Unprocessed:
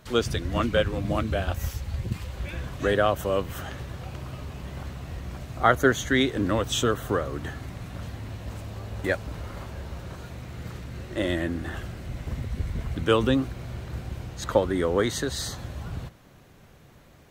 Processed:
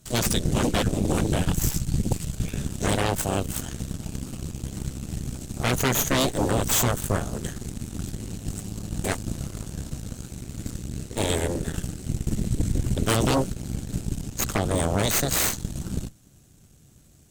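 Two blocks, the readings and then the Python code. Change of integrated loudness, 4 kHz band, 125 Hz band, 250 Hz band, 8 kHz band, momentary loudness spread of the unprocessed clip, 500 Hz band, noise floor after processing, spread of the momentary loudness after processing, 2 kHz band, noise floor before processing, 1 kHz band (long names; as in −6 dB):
+1.5 dB, +2.5 dB, +4.0 dB, +1.5 dB, +11.0 dB, 15 LU, −3.0 dB, −54 dBFS, 13 LU, −2.0 dB, −53 dBFS, −1.0 dB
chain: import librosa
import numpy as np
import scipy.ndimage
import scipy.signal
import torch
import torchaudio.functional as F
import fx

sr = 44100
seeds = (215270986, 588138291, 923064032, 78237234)

y = fx.graphic_eq(x, sr, hz=(500, 1000, 2000, 4000, 8000), db=(-9, -12, -10, -4, 11))
y = fx.cheby_harmonics(y, sr, harmonics=(8,), levels_db=(-6,), full_scale_db=-13.5)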